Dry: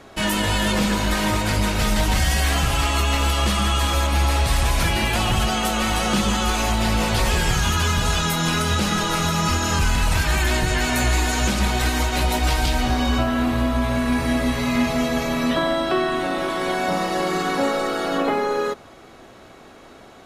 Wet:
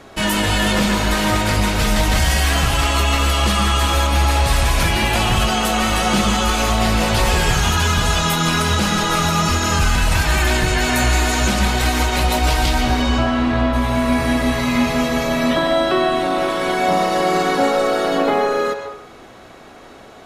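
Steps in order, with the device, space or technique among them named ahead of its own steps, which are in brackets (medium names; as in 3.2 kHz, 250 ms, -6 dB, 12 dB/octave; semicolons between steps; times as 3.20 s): 13.01–13.72 s: low-pass 10 kHz -> 4 kHz 12 dB/octave; filtered reverb send (on a send: high-pass 400 Hz 24 dB/octave + low-pass 5.8 kHz + reverberation RT60 0.65 s, pre-delay 118 ms, DRR 5 dB); on the sum: trim +3 dB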